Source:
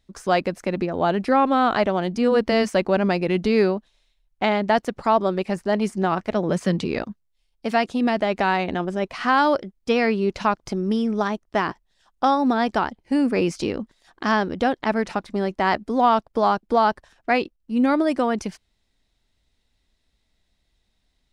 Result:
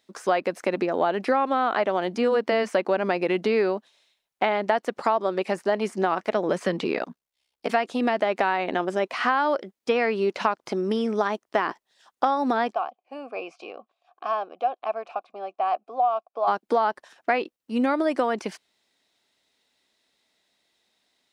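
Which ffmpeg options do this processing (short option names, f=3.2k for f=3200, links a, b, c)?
-filter_complex "[0:a]asplit=3[a][b][c];[a]afade=t=out:st=6.93:d=0.02[d];[b]aeval=exprs='val(0)*sin(2*PI*33*n/s)':c=same,afade=t=in:st=6.93:d=0.02,afade=t=out:st=7.68:d=0.02[e];[c]afade=t=in:st=7.68:d=0.02[f];[d][e][f]amix=inputs=3:normalize=0,asplit=3[g][h][i];[g]afade=t=out:st=12.72:d=0.02[j];[h]asplit=3[k][l][m];[k]bandpass=f=730:t=q:w=8,volume=0dB[n];[l]bandpass=f=1.09k:t=q:w=8,volume=-6dB[o];[m]bandpass=f=2.44k:t=q:w=8,volume=-9dB[p];[n][o][p]amix=inputs=3:normalize=0,afade=t=in:st=12.72:d=0.02,afade=t=out:st=16.47:d=0.02[q];[i]afade=t=in:st=16.47:d=0.02[r];[j][q][r]amix=inputs=3:normalize=0,acrossover=split=3200[s][t];[t]acompressor=threshold=-45dB:ratio=4:attack=1:release=60[u];[s][u]amix=inputs=2:normalize=0,highpass=350,acompressor=threshold=-24dB:ratio=4,volume=4.5dB"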